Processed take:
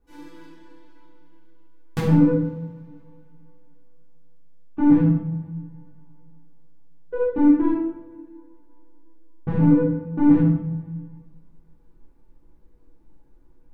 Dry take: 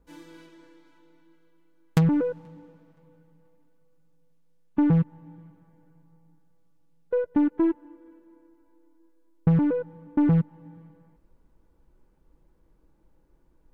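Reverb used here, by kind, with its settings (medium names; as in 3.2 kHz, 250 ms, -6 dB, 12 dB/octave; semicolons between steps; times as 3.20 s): simulated room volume 290 m³, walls mixed, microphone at 3.5 m; trim -8 dB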